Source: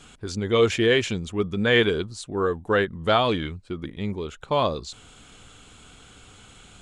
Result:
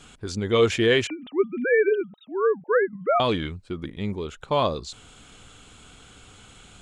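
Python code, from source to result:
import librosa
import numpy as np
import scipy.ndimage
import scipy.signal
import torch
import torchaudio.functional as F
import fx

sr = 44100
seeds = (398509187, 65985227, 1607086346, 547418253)

y = fx.sine_speech(x, sr, at=(1.07, 3.2))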